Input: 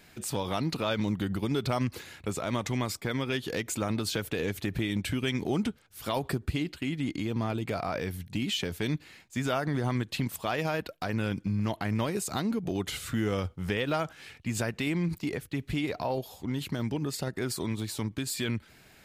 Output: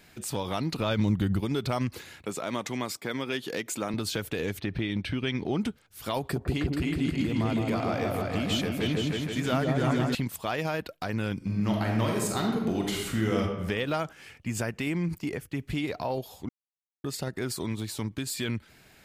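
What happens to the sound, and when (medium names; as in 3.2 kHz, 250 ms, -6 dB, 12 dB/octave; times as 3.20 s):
0.78–1.41 s: bass shelf 160 Hz +10.5 dB
2.22–3.94 s: high-pass 190 Hz
4.59–5.61 s: Savitzky-Golay filter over 15 samples
6.20–10.15 s: delay with an opening low-pass 158 ms, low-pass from 750 Hz, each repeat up 2 oct, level 0 dB
11.37–13.40 s: reverb throw, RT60 1.1 s, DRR -0.5 dB
14.10–15.70 s: peaking EQ 3.9 kHz -8.5 dB 0.29 oct
16.49–17.04 s: mute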